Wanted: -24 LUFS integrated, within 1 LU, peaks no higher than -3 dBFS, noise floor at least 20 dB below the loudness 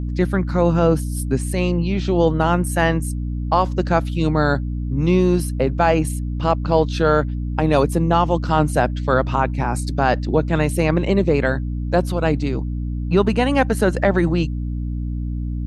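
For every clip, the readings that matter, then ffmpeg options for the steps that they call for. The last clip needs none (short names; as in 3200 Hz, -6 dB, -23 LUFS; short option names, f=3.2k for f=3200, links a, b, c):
hum 60 Hz; harmonics up to 300 Hz; hum level -22 dBFS; loudness -19.5 LUFS; peak -2.5 dBFS; loudness target -24.0 LUFS
-> -af "bandreject=f=60:t=h:w=6,bandreject=f=120:t=h:w=6,bandreject=f=180:t=h:w=6,bandreject=f=240:t=h:w=6,bandreject=f=300:t=h:w=6"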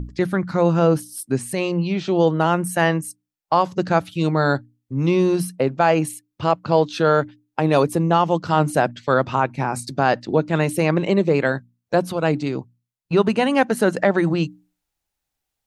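hum none; loudness -20.5 LUFS; peak -3.5 dBFS; loudness target -24.0 LUFS
-> -af "volume=-3.5dB"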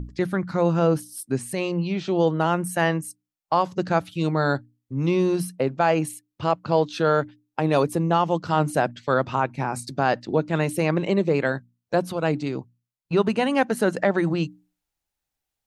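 loudness -24.0 LUFS; peak -7.0 dBFS; noise floor -85 dBFS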